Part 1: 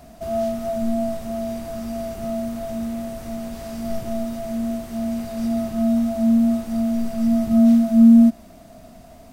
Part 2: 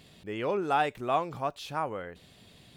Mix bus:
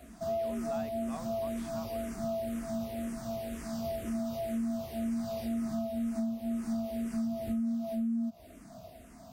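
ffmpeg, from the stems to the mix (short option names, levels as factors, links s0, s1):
-filter_complex "[0:a]acompressor=threshold=0.1:ratio=6,highpass=43,asplit=2[s0][s1];[s1]afreqshift=-2[s2];[s0][s2]amix=inputs=2:normalize=1,volume=0.75[s3];[1:a]volume=0.15[s4];[s3][s4]amix=inputs=2:normalize=0,acompressor=threshold=0.0316:ratio=6"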